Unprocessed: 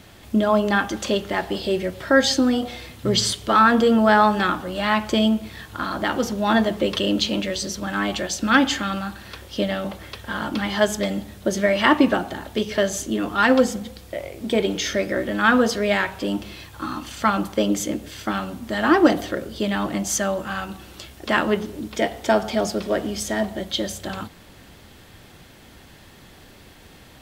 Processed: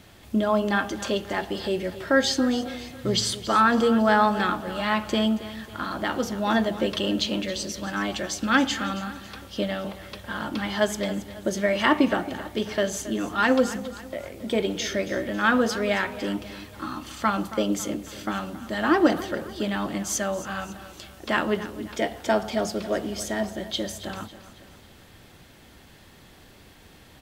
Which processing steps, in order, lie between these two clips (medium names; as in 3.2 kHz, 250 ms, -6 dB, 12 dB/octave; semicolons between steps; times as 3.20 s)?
feedback delay 274 ms, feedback 46%, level -15 dB; trim -4 dB